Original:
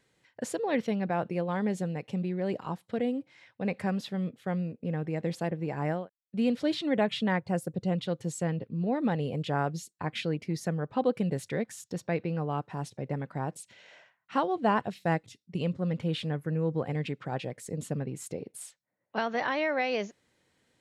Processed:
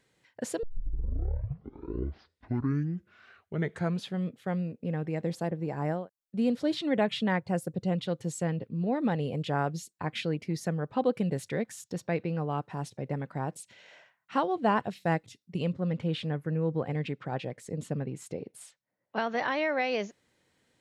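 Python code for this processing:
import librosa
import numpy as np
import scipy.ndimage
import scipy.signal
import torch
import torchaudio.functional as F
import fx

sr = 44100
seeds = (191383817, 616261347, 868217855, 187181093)

y = fx.peak_eq(x, sr, hz=2500.0, db=-5.5, octaves=1.2, at=(5.22, 6.77))
y = fx.high_shelf(y, sr, hz=7600.0, db=-10.0, at=(15.72, 19.27))
y = fx.edit(y, sr, fx.tape_start(start_s=0.63, length_s=3.64), tone=tone)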